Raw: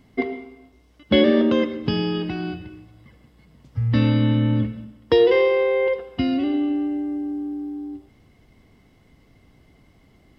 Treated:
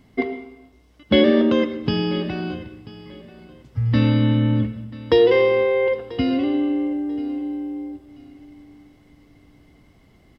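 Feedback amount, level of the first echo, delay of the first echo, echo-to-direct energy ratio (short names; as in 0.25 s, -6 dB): 26%, -19.0 dB, 0.988 s, -18.5 dB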